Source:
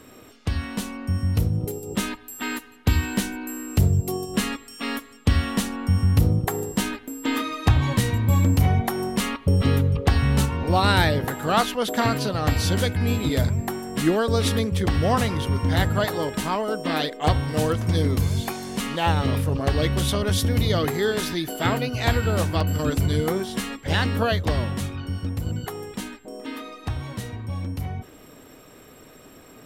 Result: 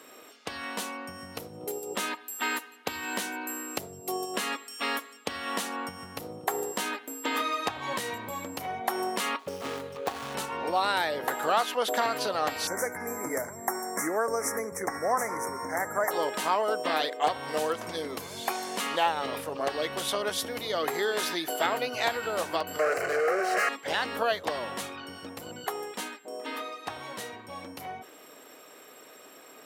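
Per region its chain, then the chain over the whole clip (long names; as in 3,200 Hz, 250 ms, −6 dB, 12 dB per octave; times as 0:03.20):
0:09.39–0:10.35: running median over 25 samples + tilt shelving filter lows −5 dB
0:12.67–0:16.11: Chebyshev band-stop filter 2,100–5,600 Hz, order 4 + parametric band 12,000 Hz +6 dB 2.5 octaves
0:22.79–0:23.69: high-shelf EQ 7,000 Hz −11.5 dB + mid-hump overdrive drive 32 dB, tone 2,300 Hz, clips at −11 dBFS + phaser with its sweep stopped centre 940 Hz, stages 6
whole clip: downward compressor, threshold −23 dBFS; dynamic equaliser 790 Hz, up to +4 dB, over −40 dBFS, Q 0.74; high-pass filter 460 Hz 12 dB per octave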